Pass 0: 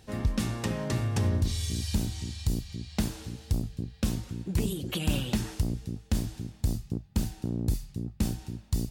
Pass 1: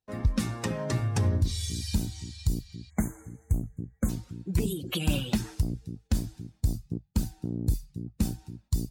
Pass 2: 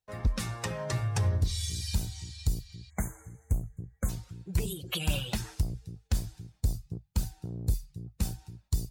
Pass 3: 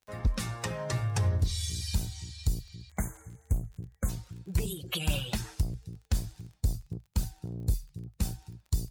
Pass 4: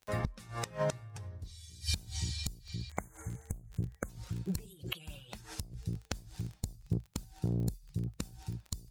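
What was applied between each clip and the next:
per-bin expansion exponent 1.5; gate with hold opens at -51 dBFS; spectral delete 2.9–4.09, 2300–6200 Hz; gain +3.5 dB
bell 260 Hz -14.5 dB 0.92 oct; wavefolder -18 dBFS
crackle 23/s -45 dBFS
flipped gate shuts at -25 dBFS, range -24 dB; gain +6 dB

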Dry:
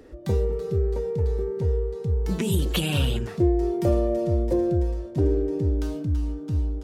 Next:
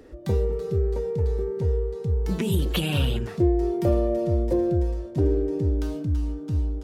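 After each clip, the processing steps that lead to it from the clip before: dynamic EQ 7400 Hz, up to -6 dB, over -50 dBFS, Q 1.1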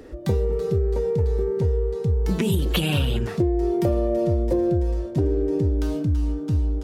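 compressor, threshold -23 dBFS, peak gain reduction 8 dB; gain +5.5 dB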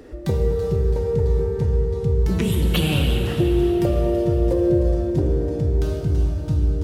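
plate-style reverb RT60 4.1 s, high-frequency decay 0.8×, DRR 2 dB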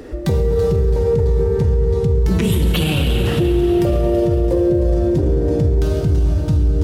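limiter -16.5 dBFS, peak gain reduction 8 dB; gain +8 dB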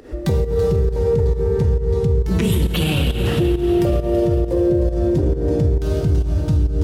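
pump 135 bpm, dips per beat 1, -12 dB, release 0.179 s; gain -1 dB

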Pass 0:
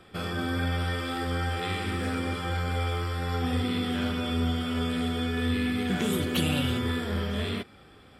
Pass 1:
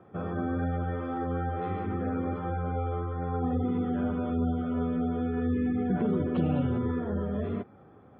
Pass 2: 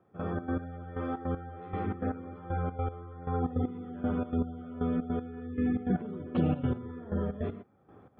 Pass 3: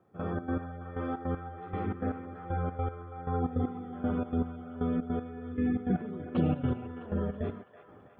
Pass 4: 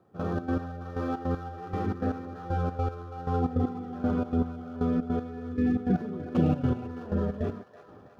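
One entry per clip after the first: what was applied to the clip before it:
spectral gate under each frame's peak -25 dB strong; Chebyshev band-pass 110–920 Hz, order 2; gain +1.5 dB
step gate "..xx.x.." 156 bpm -12 dB
band-limited delay 0.328 s, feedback 51%, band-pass 1500 Hz, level -9 dB
median filter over 15 samples; notch 2100 Hz, Q 12; gain +3.5 dB

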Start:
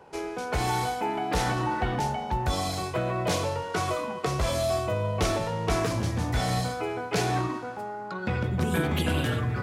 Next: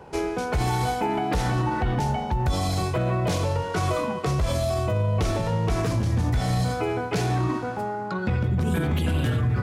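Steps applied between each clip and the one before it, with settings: low shelf 210 Hz +10 dB; in parallel at +1 dB: vocal rider within 5 dB 0.5 s; on the sum: limiter -11.5 dBFS, peak gain reduction 8 dB; gain -4.5 dB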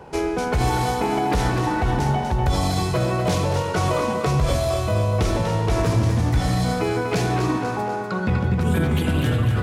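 split-band echo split 360 Hz, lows 92 ms, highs 0.245 s, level -7 dB; gain +3 dB

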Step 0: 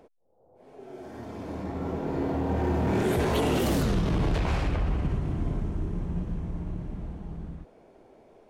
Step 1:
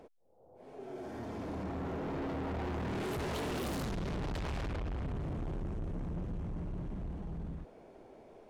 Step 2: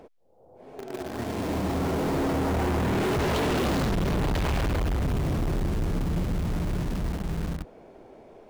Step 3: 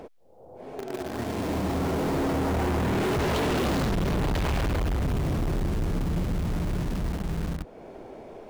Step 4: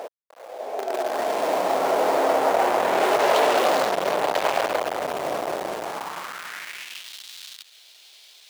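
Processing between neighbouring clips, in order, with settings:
high shelf 12000 Hz -4 dB; soft clip -35 dBFS, distortion -6 dB
median filter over 5 samples; in parallel at -12 dB: companded quantiser 2-bit; on the sum: gain +6 dB
compressor 1.5:1, threshold -44 dBFS, peak gain reduction 6.5 dB; gain +6.5 dB
sample gate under -48 dBFS; high-pass sweep 620 Hz -> 3700 Hz, 5.76–7.18; gain +6 dB

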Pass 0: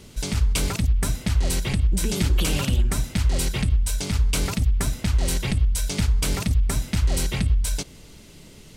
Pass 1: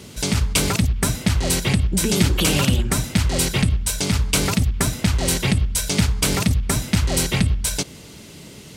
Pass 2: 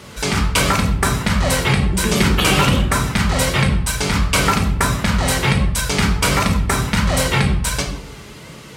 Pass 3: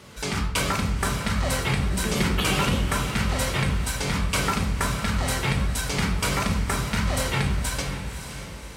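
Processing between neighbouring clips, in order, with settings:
HPF 87 Hz 12 dB/oct; gain +7 dB
on a send at -2.5 dB: reverb RT60 0.70 s, pre-delay 14 ms; on the sum: flange 1.4 Hz, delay 1.6 ms, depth 1 ms, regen +71%; bell 1200 Hz +11.5 dB 2 oct; gain +2.5 dB
diffused feedback echo 0.563 s, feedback 45%, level -9 dB; gain -8.5 dB

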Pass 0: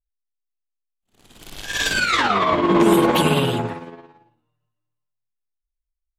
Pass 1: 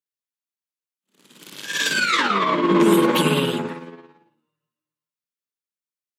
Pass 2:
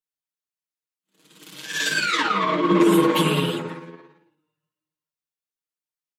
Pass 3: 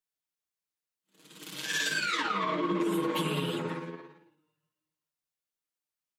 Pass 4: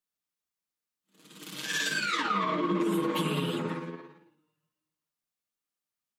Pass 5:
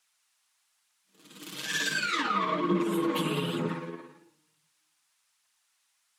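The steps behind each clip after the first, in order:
steep high-pass 150 Hz 48 dB/oct; bell 730 Hz -15 dB 0.29 oct
comb 6.4 ms, depth 76%; flange 1.4 Hz, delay 2.4 ms, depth 9.9 ms, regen -48%
compressor 5:1, threshold -28 dBFS, peak gain reduction 14 dB
small resonant body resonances 220/1200 Hz, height 7 dB
band noise 830–11000 Hz -74 dBFS; phaser 1.1 Hz, delay 4.1 ms, feedback 30%

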